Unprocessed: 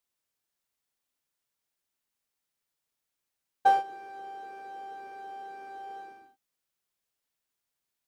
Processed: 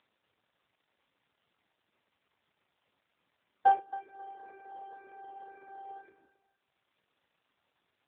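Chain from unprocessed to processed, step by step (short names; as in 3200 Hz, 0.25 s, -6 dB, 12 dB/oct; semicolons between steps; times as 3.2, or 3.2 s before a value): reverb removal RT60 0.79 s; high shelf 2600 Hz -7 dB; notches 50/100/150/200/250/300/350/400/450 Hz; upward compressor, threshold -56 dBFS; 3.74–6.1 companded quantiser 8-bit; thinning echo 0.271 s, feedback 30%, high-pass 300 Hz, level -15.5 dB; AMR-NB 7.95 kbps 8000 Hz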